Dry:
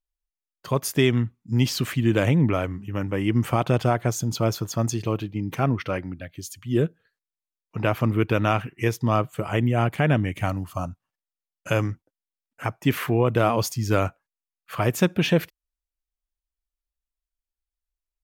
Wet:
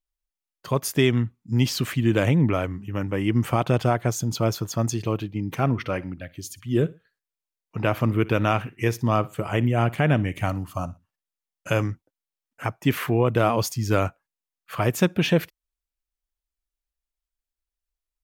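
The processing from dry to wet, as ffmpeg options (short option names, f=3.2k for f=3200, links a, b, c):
-filter_complex "[0:a]asettb=1/sr,asplit=3[a][b][c];[a]atrim=end=5.524[d];[b]atrim=start=5.52:end=11.83,asetpts=PTS-STARTPTS,afade=t=in:d=0.004:c=qsin,afade=t=out:st=6.306:d=0.004:c=qsin,aecho=1:1:60|120:0.0891|0.0267,atrim=end_sample=278271[e];[c]atrim=start=11.826[f];[d][e]acrossfade=d=0.004:c1=hsin:c2=qsin[g];[g][f]acrossfade=d=0.004:c1=qsin:c2=hsin"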